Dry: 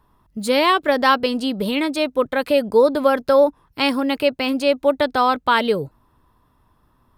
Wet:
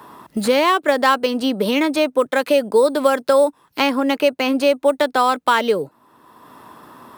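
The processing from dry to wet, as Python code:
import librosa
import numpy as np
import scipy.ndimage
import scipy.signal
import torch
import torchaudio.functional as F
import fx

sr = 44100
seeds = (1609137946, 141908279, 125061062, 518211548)

p1 = scipy.signal.sosfilt(scipy.signal.butter(2, 250.0, 'highpass', fs=sr, output='sos'), x)
p2 = fx.sample_hold(p1, sr, seeds[0], rate_hz=8900.0, jitter_pct=0)
p3 = p1 + (p2 * 10.0 ** (-10.5 / 20.0))
p4 = fx.band_squash(p3, sr, depth_pct=70)
y = p4 * 10.0 ** (-1.0 / 20.0)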